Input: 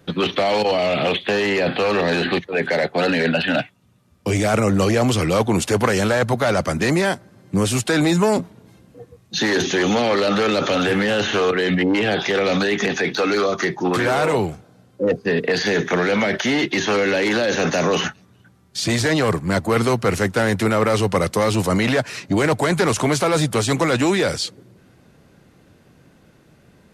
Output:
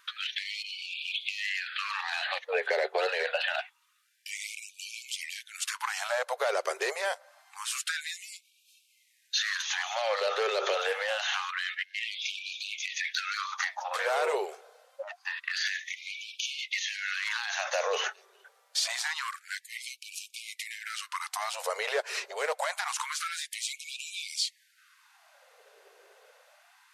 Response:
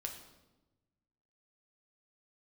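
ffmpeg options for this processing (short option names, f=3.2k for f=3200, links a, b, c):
-af "acompressor=threshold=-25dB:ratio=6,afftfilt=real='re*gte(b*sr/1024,370*pow(2300/370,0.5+0.5*sin(2*PI*0.26*pts/sr)))':imag='im*gte(b*sr/1024,370*pow(2300/370,0.5+0.5*sin(2*PI*0.26*pts/sr)))':win_size=1024:overlap=0.75"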